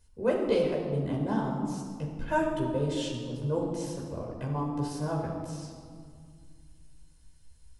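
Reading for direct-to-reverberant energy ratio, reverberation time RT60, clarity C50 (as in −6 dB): −2.0 dB, 2.1 s, 3.0 dB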